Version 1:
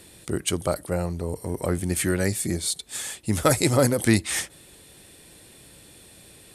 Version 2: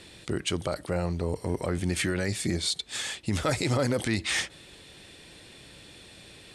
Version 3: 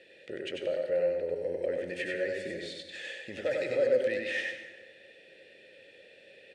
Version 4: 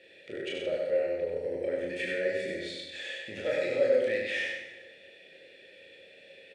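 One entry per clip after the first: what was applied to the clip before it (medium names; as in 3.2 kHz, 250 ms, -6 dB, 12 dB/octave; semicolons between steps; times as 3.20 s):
low-pass 3.7 kHz 12 dB/octave; treble shelf 2.5 kHz +10.5 dB; peak limiter -17 dBFS, peak gain reduction 11 dB
vowel filter e; delay 95 ms -4 dB; on a send at -7 dB: reverberation RT60 1.3 s, pre-delay 72 ms; on the sum: trim +5 dB
small resonant body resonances 2.3/3.4 kHz, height 8 dB, ringing for 25 ms; on a send: early reflections 26 ms -4.5 dB, 37 ms -4 dB, 75 ms -6 dB; on the sum: trim -2 dB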